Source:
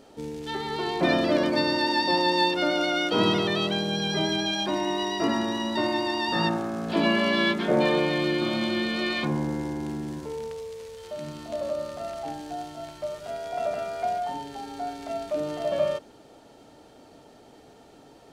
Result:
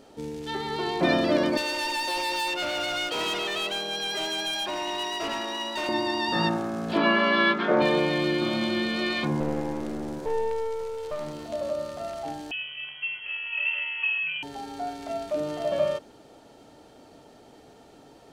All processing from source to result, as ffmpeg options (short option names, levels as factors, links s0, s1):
-filter_complex "[0:a]asettb=1/sr,asplit=3[s0][s1][s2];[s0]atrim=end=1.574[s3];[s1]atrim=start=1.57:end=5.89,asetpts=PTS-STARTPTS,afade=t=in:d=0.004:c=qsin,afade=t=out:st=4.316:d=0.004:c=qsin,highpass=490,asoftclip=type=hard:threshold=0.0447,equalizer=f=2700:t=o:w=0.25:g=6.5[s4];[s2]atrim=start=5.886[s5];[s3][s4]acrossfade=d=0.004:c1=hsin:c2=qsin[s6];[s6][s5]acrossfade=d=0.004:c1=qsin:c2=hsin,asettb=1/sr,asplit=3[s7][s8][s9];[s7]atrim=end=6.974[s10];[s8]atrim=start=6.97:end=7.82,asetpts=PTS-STARTPTS,afade=t=in:d=0.004:c=qsin,afade=t=out:st=0.846:d=0.004:c=qsin,highpass=210,lowpass=4100,equalizer=f=1300:w=1.9:g=9[s11];[s9]atrim=start=7.816[s12];[s10][s11]acrossfade=d=0.004:c1=hsin:c2=qsin[s13];[s13][s12]acrossfade=d=0.004:c1=qsin:c2=hsin,asettb=1/sr,asplit=3[s14][s15][s16];[s14]atrim=end=9.404[s17];[s15]atrim=start=9.4:end=11.46,asetpts=PTS-STARTPTS,afade=t=in:d=0.004:c=qsin,afade=t=out:st=2.056:d=0.004:c=qsin,equalizer=f=480:w=2.5:g=12.5,aeval=exprs='clip(val(0),-1,0.015)':c=same[s18];[s16]atrim=start=11.456[s19];[s17][s18]acrossfade=d=0.004:c1=hsin:c2=qsin[s20];[s20][s19]acrossfade=d=0.004:c1=qsin:c2=hsin,asettb=1/sr,asplit=3[s21][s22][s23];[s21]atrim=end=12.514[s24];[s22]atrim=start=12.51:end=14.43,asetpts=PTS-STARTPTS,afade=t=in:d=0.004:c=qsin,afade=t=out:st=1.916:d=0.004:c=qsin,lowshelf=f=150:g=9.5,lowpass=f=2800:t=q:w=0.5098,lowpass=f=2800:t=q:w=0.6013,lowpass=f=2800:t=q:w=0.9,lowpass=f=2800:t=q:w=2.563,afreqshift=-3300[s25];[s23]atrim=start=14.426[s26];[s24][s25]acrossfade=d=0.004:c1=hsin:c2=qsin[s27];[s27][s26]acrossfade=d=0.004:c1=qsin:c2=hsin"